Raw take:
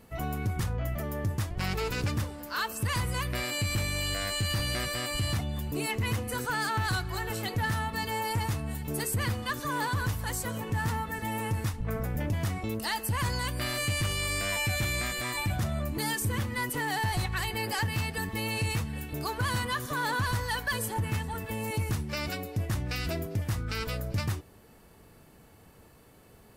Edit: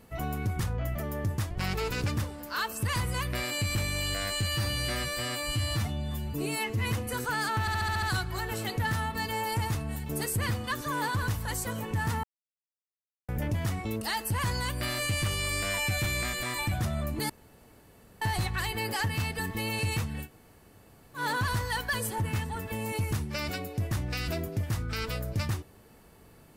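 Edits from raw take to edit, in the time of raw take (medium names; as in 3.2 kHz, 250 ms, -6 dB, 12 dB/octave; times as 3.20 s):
4.47–6.06 s: stretch 1.5×
6.81 s: stutter 0.07 s, 7 plays
11.02–12.07 s: mute
16.08–17.00 s: room tone
19.04–19.97 s: room tone, crossfade 0.10 s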